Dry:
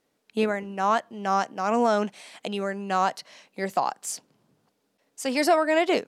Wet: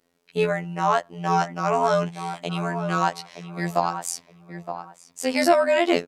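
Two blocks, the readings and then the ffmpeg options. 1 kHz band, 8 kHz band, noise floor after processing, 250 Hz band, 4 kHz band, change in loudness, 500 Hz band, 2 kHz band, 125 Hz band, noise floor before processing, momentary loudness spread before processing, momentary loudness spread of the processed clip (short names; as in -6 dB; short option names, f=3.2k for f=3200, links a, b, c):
+2.0 dB, +2.0 dB, -64 dBFS, +1.5 dB, +2.0 dB, +2.0 dB, +2.5 dB, +2.0 dB, +10.5 dB, -74 dBFS, 12 LU, 17 LU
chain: -filter_complex "[0:a]afreqshift=-18,afftfilt=real='hypot(re,im)*cos(PI*b)':imag='0':win_size=2048:overlap=0.75,asplit=2[a][b];[b]adelay=918,lowpass=f=1.7k:p=1,volume=-9dB,asplit=2[c][d];[d]adelay=918,lowpass=f=1.7k:p=1,volume=0.23,asplit=2[e][f];[f]adelay=918,lowpass=f=1.7k:p=1,volume=0.23[g];[a][c][e][g]amix=inputs=4:normalize=0,volume=5.5dB"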